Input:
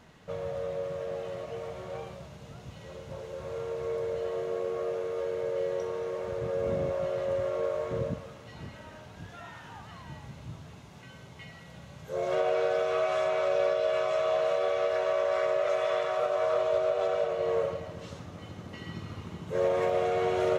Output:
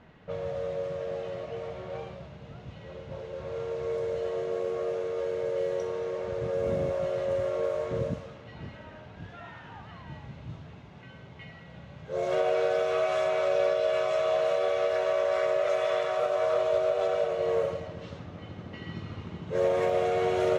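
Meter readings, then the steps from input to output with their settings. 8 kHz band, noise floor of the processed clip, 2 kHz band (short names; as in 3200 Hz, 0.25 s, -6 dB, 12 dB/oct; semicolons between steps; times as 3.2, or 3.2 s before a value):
n/a, -48 dBFS, +1.0 dB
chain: bell 1100 Hz -2.5 dB 0.7 oct; low-pass opened by the level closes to 2500 Hz, open at -25 dBFS; gain +1.5 dB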